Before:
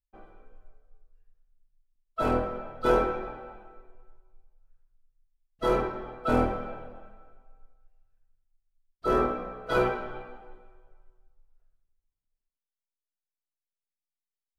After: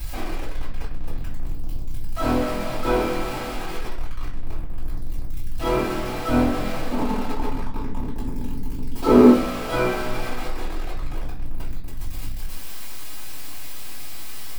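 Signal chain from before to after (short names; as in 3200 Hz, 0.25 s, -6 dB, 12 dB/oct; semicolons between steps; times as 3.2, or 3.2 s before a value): zero-crossing step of -25.5 dBFS; 6.92–9.31 small resonant body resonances 250/410/880 Hz, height 16 dB, ringing for 40 ms; reverb RT60 0.35 s, pre-delay 3 ms, DRR -9.5 dB; gain -9.5 dB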